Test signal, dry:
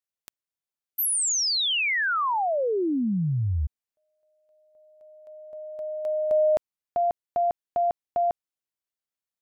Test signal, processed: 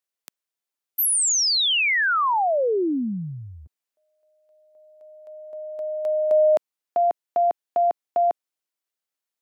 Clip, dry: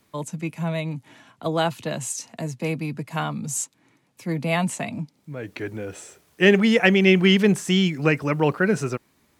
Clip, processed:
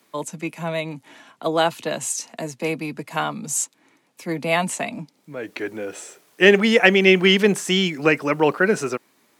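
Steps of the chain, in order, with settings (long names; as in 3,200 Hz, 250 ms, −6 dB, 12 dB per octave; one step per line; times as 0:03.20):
high-pass filter 270 Hz 12 dB per octave
level +4 dB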